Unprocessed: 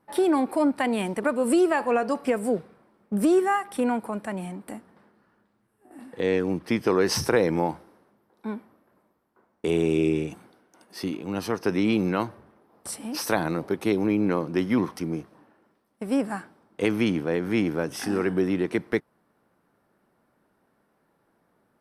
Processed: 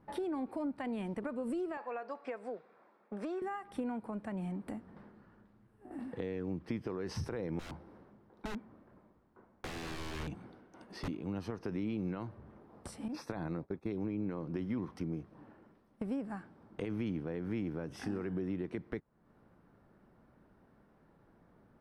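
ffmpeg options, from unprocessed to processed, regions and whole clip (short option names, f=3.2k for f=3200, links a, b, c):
-filter_complex "[0:a]asettb=1/sr,asplit=3[a][b][c];[a]atrim=end=1.774[d];[b]atrim=start=1.77:end=3.42,asetpts=PTS-STARTPTS,afade=t=in:d=0.004:c=qsin,afade=t=out:st=1.646:d=0.004:c=qsin,highpass=600,lowpass=4.6k,bandreject=f=3k:w=10[e];[c]atrim=start=3.416[f];[d][e]acrossfade=d=0.004:c1=hsin:c2=qsin[g];[g][f]acrossfade=d=0.004:c1=qsin:c2=hsin,asettb=1/sr,asplit=3[h][i][j];[h]atrim=end=7.594[k];[i]atrim=start=7.59:end=11.08,asetpts=PTS-STARTPTS,afade=t=in:d=0.004:c=qsin,afade=t=out:st=3.486:d=0.004:c=qsin,highshelf=f=9.2k:g=-8.5,aeval=exprs='(mod(25.1*val(0)+1,2)-1)/25.1':c=same[l];[j]atrim=start=11.076[m];[k][l]acrossfade=d=0.004:c1=hsin:c2=qsin[n];[n][m]acrossfade=d=0.004:c1=qsin:c2=hsin,asettb=1/sr,asplit=3[o][p][q];[o]atrim=end=13.084[r];[p]atrim=start=13.08:end=13.91,asetpts=PTS-STARTPTS,afade=t=in:d=0.004:c=qsin,afade=t=out:st=0.826:d=0.004:c=qsin,highshelf=f=5.5k:g=-5,agate=range=-33dB:threshold=-30dB:ratio=3:release=100:detection=peak,asuperstop=centerf=3000:order=8:qfactor=6.6[s];[q]atrim=start=13.906[t];[r][s]acrossfade=d=0.004:c1=hsin:c2=qsin[u];[u][t]acrossfade=d=0.004:c1=qsin:c2=hsin,alimiter=limit=-15.5dB:level=0:latency=1,acompressor=threshold=-44dB:ratio=3,aemphasis=mode=reproduction:type=bsi"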